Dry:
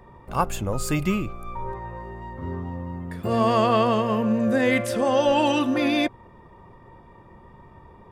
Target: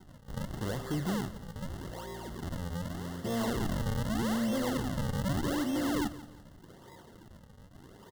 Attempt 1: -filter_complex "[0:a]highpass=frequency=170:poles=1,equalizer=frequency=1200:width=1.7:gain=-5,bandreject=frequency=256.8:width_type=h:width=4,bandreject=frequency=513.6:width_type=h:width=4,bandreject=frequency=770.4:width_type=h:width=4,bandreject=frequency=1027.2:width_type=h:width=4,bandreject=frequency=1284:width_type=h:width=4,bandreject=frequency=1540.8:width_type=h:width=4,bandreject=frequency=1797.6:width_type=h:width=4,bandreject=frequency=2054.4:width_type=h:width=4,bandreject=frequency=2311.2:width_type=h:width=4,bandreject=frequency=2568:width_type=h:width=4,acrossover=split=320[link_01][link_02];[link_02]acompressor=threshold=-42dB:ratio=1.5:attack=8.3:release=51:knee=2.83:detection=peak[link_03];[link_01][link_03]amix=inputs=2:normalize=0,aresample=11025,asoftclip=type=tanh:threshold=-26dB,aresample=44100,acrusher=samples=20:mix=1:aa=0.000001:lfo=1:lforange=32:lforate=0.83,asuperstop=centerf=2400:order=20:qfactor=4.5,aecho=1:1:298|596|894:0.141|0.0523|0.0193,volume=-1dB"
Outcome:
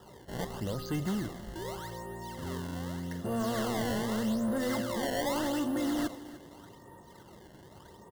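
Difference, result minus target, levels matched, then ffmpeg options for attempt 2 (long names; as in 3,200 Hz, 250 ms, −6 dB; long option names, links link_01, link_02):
echo 125 ms late; sample-and-hold swept by an LFO: distortion −9 dB
-filter_complex "[0:a]highpass=frequency=170:poles=1,equalizer=frequency=1200:width=1.7:gain=-5,bandreject=frequency=256.8:width_type=h:width=4,bandreject=frequency=513.6:width_type=h:width=4,bandreject=frequency=770.4:width_type=h:width=4,bandreject=frequency=1027.2:width_type=h:width=4,bandreject=frequency=1284:width_type=h:width=4,bandreject=frequency=1540.8:width_type=h:width=4,bandreject=frequency=1797.6:width_type=h:width=4,bandreject=frequency=2054.4:width_type=h:width=4,bandreject=frequency=2311.2:width_type=h:width=4,bandreject=frequency=2568:width_type=h:width=4,acrossover=split=320[link_01][link_02];[link_02]acompressor=threshold=-42dB:ratio=1.5:attack=8.3:release=51:knee=2.83:detection=peak[link_03];[link_01][link_03]amix=inputs=2:normalize=0,aresample=11025,asoftclip=type=tanh:threshold=-26dB,aresample=44100,acrusher=samples=73:mix=1:aa=0.000001:lfo=1:lforange=117:lforate=0.83,asuperstop=centerf=2400:order=20:qfactor=4.5,aecho=1:1:173|346|519:0.141|0.0523|0.0193,volume=-1dB"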